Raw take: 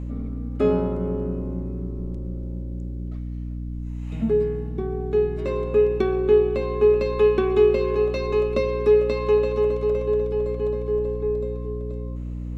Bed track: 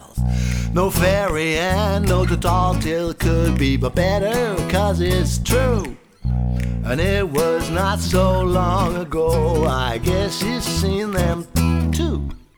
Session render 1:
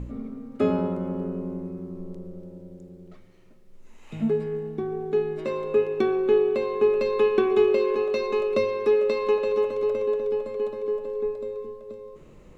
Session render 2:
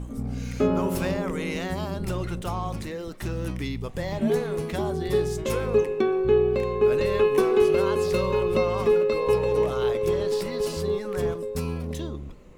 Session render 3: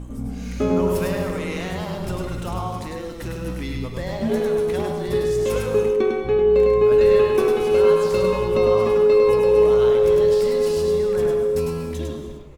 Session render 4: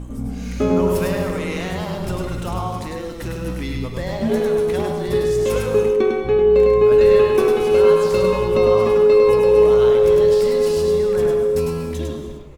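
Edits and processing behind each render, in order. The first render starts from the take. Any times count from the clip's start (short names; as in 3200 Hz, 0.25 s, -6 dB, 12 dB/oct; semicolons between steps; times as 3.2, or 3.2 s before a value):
de-hum 60 Hz, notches 7
add bed track -13 dB
echo 0.102 s -3.5 dB; non-linear reverb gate 0.33 s flat, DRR 6.5 dB
gain +2.5 dB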